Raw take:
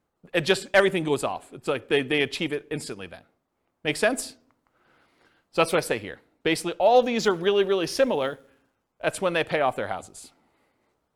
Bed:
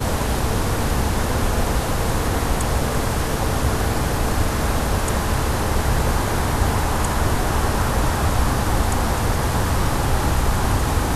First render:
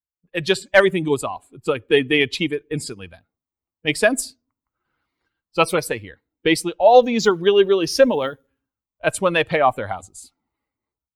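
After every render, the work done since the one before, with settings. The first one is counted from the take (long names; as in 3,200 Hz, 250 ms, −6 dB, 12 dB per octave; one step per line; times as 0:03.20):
spectral dynamics exaggerated over time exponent 1.5
automatic gain control gain up to 12 dB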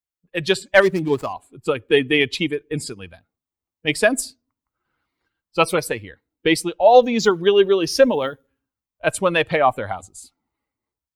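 0:00.82–0:01.33: running median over 15 samples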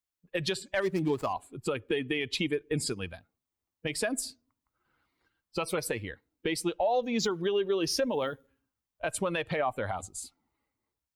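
downward compressor 4 to 1, threshold −25 dBFS, peak gain reduction 15.5 dB
brickwall limiter −19.5 dBFS, peak gain reduction 9 dB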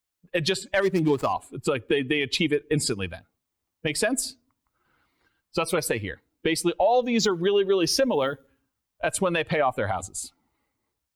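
level +6.5 dB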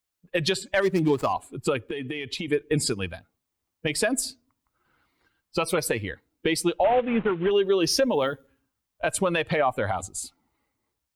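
0:01.81–0:02.48: downward compressor 12 to 1, threshold −27 dBFS
0:06.84–0:07.51: variable-slope delta modulation 16 kbit/s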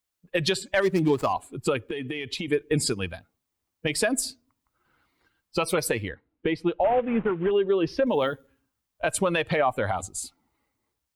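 0:06.08–0:08.07: high-frequency loss of the air 380 metres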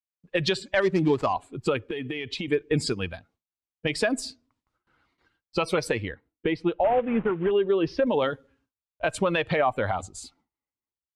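noise gate with hold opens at −60 dBFS
low-pass filter 5,600 Hz 12 dB per octave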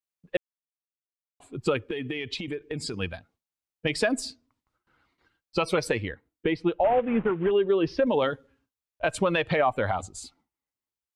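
0:00.37–0:01.40: silence
0:02.37–0:02.94: downward compressor 4 to 1, threshold −30 dBFS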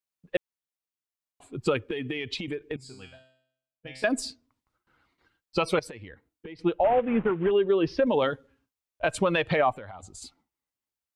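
0:02.76–0:04.04: tuned comb filter 130 Hz, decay 0.69 s, mix 90%
0:05.79–0:06.59: downward compressor, threshold −39 dBFS
0:09.72–0:10.22: downward compressor 4 to 1, threshold −41 dBFS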